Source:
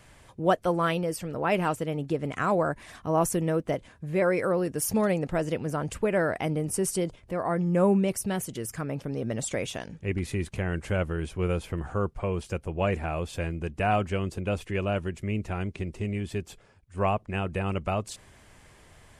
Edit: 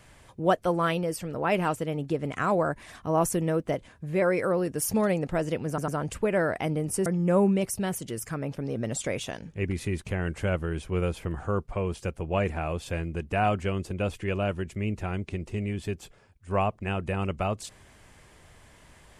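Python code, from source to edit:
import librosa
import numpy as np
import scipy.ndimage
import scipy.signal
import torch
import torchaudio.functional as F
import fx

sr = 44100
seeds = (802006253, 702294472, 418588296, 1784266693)

y = fx.edit(x, sr, fx.stutter(start_s=5.68, slice_s=0.1, count=3),
    fx.cut(start_s=6.86, length_s=0.67), tone=tone)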